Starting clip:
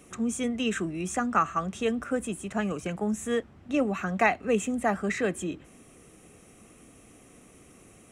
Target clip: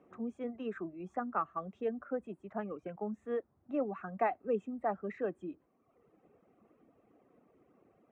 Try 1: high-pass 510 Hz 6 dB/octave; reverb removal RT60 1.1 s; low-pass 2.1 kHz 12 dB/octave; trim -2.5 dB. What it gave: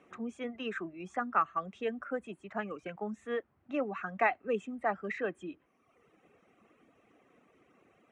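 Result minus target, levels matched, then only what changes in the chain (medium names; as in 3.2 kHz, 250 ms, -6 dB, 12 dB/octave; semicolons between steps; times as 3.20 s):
2 kHz band +8.0 dB
change: low-pass 880 Hz 12 dB/octave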